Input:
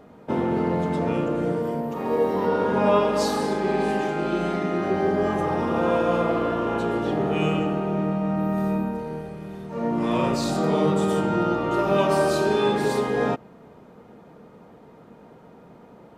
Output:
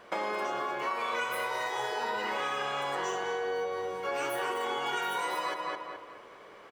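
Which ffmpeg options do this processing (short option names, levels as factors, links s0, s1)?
-filter_complex "[0:a]asplit=2[s0][s1];[s1]adelay=512,lowpass=f=1300:p=1,volume=0.501,asplit=2[s2][s3];[s3]adelay=512,lowpass=f=1300:p=1,volume=0.4,asplit=2[s4][s5];[s5]adelay=512,lowpass=f=1300:p=1,volume=0.4,asplit=2[s6][s7];[s7]adelay=512,lowpass=f=1300:p=1,volume=0.4,asplit=2[s8][s9];[s9]adelay=512,lowpass=f=1300:p=1,volume=0.4[s10];[s0][s2][s4][s6][s8][s10]amix=inputs=6:normalize=0,asetrate=106281,aresample=44100,acompressor=threshold=0.0562:ratio=6,volume=0.596"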